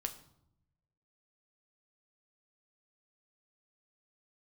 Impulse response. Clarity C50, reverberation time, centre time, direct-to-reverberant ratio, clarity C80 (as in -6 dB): 13.5 dB, 0.75 s, 9 ms, 5.5 dB, 16.0 dB